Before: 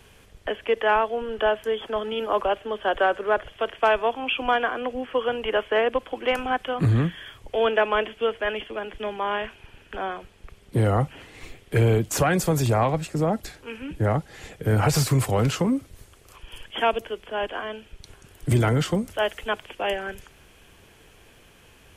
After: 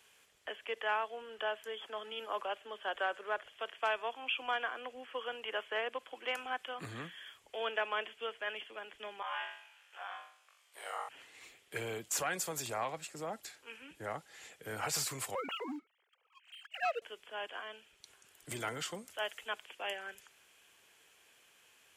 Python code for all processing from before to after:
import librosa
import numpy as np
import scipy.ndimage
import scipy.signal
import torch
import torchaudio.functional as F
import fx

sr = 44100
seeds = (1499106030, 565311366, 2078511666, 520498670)

y = fx.chain(x, sr, fx.highpass(hz=650.0, slope=24),
    fx.ring_mod(carrier_hz=36.0),
    fx.room_flutter(wall_m=3.6, rt60_s=0.54), at=(9.22, 11.09))
y = fx.chain(y, sr, fx.sine_speech(),
    fx.highpass(hz=260.0, slope=6),
    fx.leveller(passes=1), at=(15.35, 17.02))
y = fx.highpass(y, sr, hz=1400.0, slope=6)
y = fx.peak_eq(y, sr, hz=7300.0, db=4.5, octaves=0.21)
y = y * librosa.db_to_amplitude(-8.0)